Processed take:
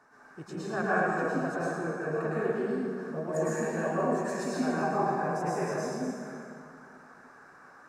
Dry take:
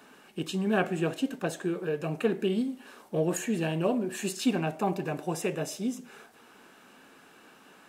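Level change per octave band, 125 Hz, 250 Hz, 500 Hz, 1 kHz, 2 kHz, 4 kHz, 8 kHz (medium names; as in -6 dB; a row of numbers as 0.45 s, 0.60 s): -2.5 dB, -3.0 dB, +0.5 dB, +5.5 dB, +3.5 dB, -10.0 dB, -5.5 dB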